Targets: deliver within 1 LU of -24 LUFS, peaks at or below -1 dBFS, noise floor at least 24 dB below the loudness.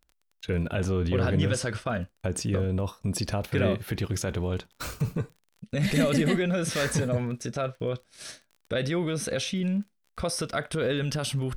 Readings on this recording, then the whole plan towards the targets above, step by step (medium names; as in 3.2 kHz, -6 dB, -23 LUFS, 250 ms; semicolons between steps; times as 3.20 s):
tick rate 24 per s; loudness -28.5 LUFS; peak level -11.5 dBFS; loudness target -24.0 LUFS
-> de-click; trim +4.5 dB